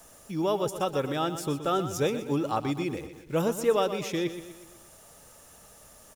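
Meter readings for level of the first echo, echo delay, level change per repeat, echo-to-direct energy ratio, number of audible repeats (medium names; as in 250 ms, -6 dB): -11.5 dB, 123 ms, -6.0 dB, -10.0 dB, 5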